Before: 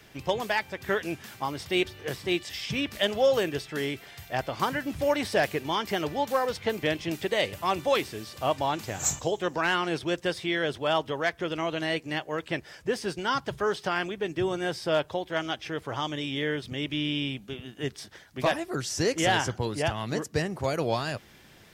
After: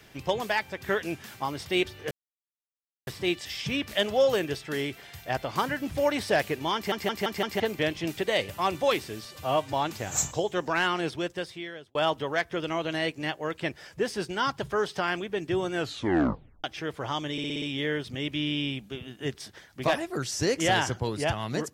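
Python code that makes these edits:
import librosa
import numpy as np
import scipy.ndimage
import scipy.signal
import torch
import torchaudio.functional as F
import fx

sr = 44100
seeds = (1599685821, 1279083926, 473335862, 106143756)

y = fx.edit(x, sr, fx.insert_silence(at_s=2.11, length_s=0.96),
    fx.stutter_over(start_s=5.79, slice_s=0.17, count=5),
    fx.stretch_span(start_s=8.29, length_s=0.32, factor=1.5),
    fx.fade_out_span(start_s=9.87, length_s=0.96),
    fx.tape_stop(start_s=14.62, length_s=0.9),
    fx.stutter(start_s=16.2, slice_s=0.06, count=6), tone=tone)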